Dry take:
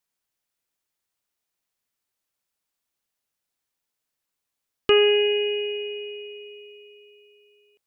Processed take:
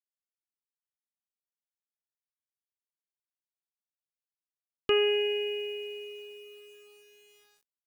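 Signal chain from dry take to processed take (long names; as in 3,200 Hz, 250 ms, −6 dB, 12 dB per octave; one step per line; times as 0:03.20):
bit reduction 9 bits
level −7.5 dB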